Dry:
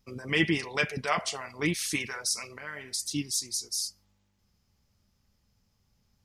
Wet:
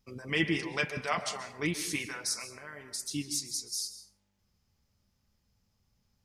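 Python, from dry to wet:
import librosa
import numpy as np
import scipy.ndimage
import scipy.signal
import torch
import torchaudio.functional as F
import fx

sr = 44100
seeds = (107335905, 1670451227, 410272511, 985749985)

y = fx.peak_eq(x, sr, hz=2800.0, db=-7.0, octaves=1.4, at=(2.49, 3.05))
y = fx.rev_plate(y, sr, seeds[0], rt60_s=0.67, hf_ratio=0.5, predelay_ms=120, drr_db=10.5)
y = y * librosa.db_to_amplitude(-3.5)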